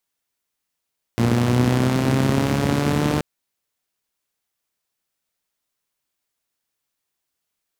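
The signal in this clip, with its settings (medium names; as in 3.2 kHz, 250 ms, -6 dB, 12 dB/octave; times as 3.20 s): four-cylinder engine model, changing speed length 2.03 s, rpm 3500, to 4500, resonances 120/210 Hz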